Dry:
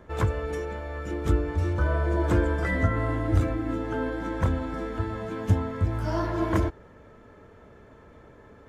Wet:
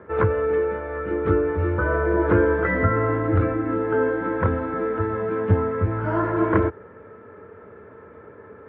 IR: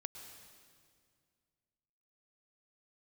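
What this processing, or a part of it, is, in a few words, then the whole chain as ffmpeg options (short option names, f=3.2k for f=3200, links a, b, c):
bass cabinet: -af "highpass=f=89:w=0.5412,highpass=f=89:w=1.3066,equalizer=f=140:t=q:w=4:g=-7,equalizer=f=260:t=q:w=4:g=-3,equalizer=f=440:t=q:w=4:g=7,equalizer=f=690:t=q:w=4:g=-4,equalizer=f=1.4k:t=q:w=4:g=5,lowpass=f=2.2k:w=0.5412,lowpass=f=2.2k:w=1.3066,volume=5.5dB"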